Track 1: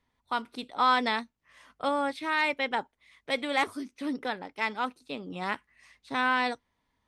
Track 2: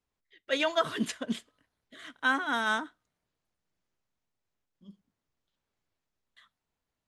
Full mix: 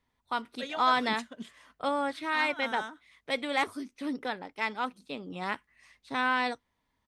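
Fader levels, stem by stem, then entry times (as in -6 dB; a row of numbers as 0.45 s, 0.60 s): -1.5 dB, -10.0 dB; 0.00 s, 0.10 s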